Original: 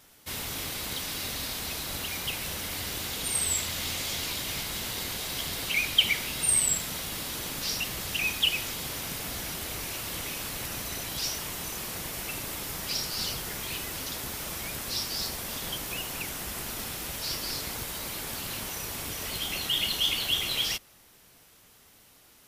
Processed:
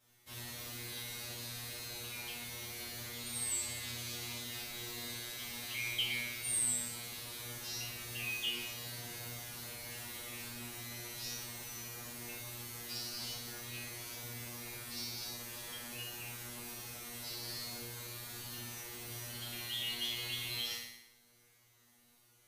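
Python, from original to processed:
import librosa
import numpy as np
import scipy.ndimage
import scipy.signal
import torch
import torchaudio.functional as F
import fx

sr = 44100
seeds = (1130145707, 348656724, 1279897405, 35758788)

y = fx.comb_fb(x, sr, f0_hz=120.0, decay_s=0.47, harmonics='all', damping=0.0, mix_pct=100)
y = fx.room_flutter(y, sr, wall_m=10.1, rt60_s=0.84)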